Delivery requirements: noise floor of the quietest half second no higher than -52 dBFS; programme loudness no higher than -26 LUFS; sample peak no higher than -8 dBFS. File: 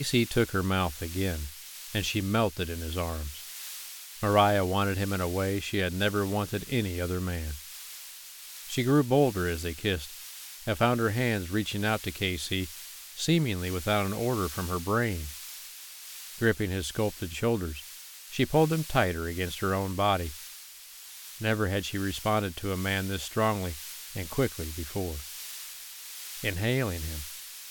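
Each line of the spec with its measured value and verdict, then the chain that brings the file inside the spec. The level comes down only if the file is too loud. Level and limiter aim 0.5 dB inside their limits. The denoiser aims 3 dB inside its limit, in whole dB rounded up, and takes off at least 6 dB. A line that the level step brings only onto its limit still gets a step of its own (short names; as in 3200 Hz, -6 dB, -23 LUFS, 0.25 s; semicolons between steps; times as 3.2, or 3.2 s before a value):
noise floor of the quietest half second -47 dBFS: fail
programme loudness -29.5 LUFS: OK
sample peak -9.0 dBFS: OK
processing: denoiser 8 dB, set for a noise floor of -47 dBFS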